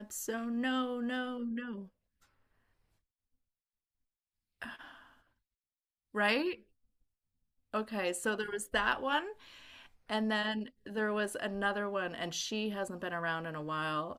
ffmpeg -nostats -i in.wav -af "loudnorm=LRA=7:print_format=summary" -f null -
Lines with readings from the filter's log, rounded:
Input Integrated:    -35.3 LUFS
Input True Peak:     -14.9 dBTP
Input LRA:            20.0 LU
Input Threshold:     -45.9 LUFS